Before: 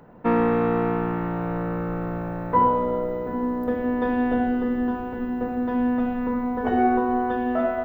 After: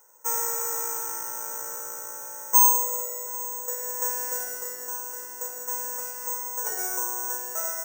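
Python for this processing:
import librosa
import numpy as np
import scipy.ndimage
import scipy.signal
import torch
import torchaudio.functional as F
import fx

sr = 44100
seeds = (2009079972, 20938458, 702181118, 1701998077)

y = scipy.signal.sosfilt(scipy.signal.butter(2, 1000.0, 'highpass', fs=sr, output='sos'), x)
y = y + 0.77 * np.pad(y, (int(2.1 * sr / 1000.0), 0))[:len(y)]
y = fx.rider(y, sr, range_db=4, speed_s=2.0)
y = fx.lowpass(y, sr, hz=1600.0, slope=6)
y = (np.kron(scipy.signal.resample_poly(y, 1, 6), np.eye(6)[0]) * 6)[:len(y)]
y = y * librosa.db_to_amplitude(-7.0)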